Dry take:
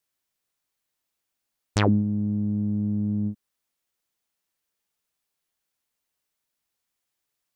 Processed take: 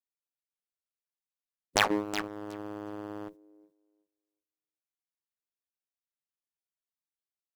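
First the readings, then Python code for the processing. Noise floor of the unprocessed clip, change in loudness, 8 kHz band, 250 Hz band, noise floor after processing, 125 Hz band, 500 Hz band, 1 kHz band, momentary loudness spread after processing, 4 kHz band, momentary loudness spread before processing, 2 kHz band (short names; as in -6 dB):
-82 dBFS, -6.5 dB, n/a, -12.5 dB, under -85 dBFS, -23.5 dB, -1.5 dB, +2.0 dB, 16 LU, +4.5 dB, 8 LU, +4.5 dB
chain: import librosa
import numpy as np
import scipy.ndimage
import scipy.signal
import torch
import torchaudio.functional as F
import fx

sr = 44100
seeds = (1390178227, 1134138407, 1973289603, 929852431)

p1 = fx.dynamic_eq(x, sr, hz=260.0, q=2.2, threshold_db=-38.0, ratio=4.0, max_db=-4)
p2 = fx.spec_gate(p1, sr, threshold_db=-15, keep='weak')
p3 = fx.echo_thinned(p2, sr, ms=368, feedback_pct=20, hz=220.0, wet_db=-13.5)
p4 = fx.fuzz(p3, sr, gain_db=37.0, gate_db=-40.0)
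y = p3 + F.gain(torch.from_numpy(p4), -9.0).numpy()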